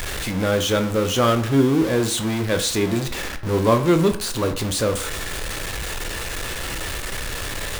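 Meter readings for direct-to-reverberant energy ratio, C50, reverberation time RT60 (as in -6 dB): 7.0 dB, 12.5 dB, 0.55 s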